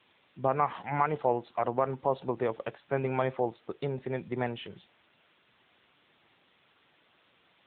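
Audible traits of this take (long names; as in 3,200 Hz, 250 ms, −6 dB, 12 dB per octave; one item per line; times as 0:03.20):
a quantiser's noise floor 10 bits, dither triangular
AMR narrowband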